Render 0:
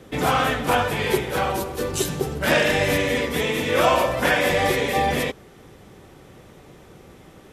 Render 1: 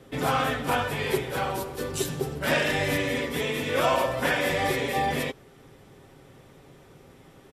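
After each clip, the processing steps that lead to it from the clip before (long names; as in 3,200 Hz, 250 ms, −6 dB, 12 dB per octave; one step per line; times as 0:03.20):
notch filter 6,400 Hz, Q 22
comb filter 7.4 ms, depth 35%
level −5.5 dB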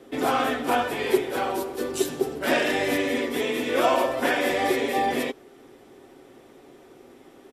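low shelf with overshoot 220 Hz −9 dB, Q 1.5
hollow resonant body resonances 240/350/710 Hz, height 6 dB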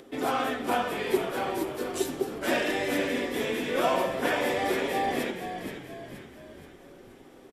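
upward compression, threshold −42 dBFS
on a send: echo with shifted repeats 475 ms, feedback 47%, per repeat −55 Hz, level −8.5 dB
on the sum: level −4.5 dB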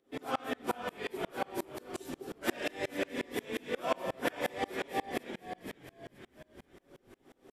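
tremolo with a ramp in dB swelling 5.6 Hz, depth 31 dB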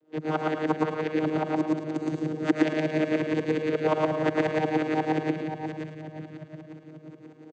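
channel vocoder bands 16, saw 155 Hz
on a send: loudspeakers that aren't time-aligned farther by 40 metres 0 dB, 77 metres −10 dB
on the sum: level +8.5 dB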